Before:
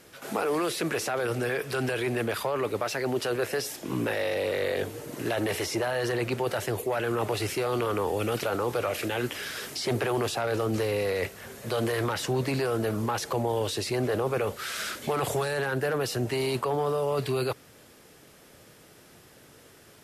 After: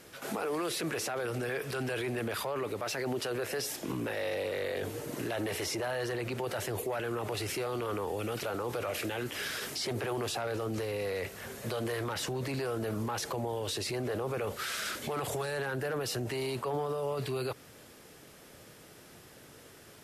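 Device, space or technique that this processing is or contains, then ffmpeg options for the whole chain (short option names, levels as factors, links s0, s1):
stacked limiters: -af "alimiter=limit=0.0841:level=0:latency=1:release=111,alimiter=level_in=1.33:limit=0.0631:level=0:latency=1:release=25,volume=0.75"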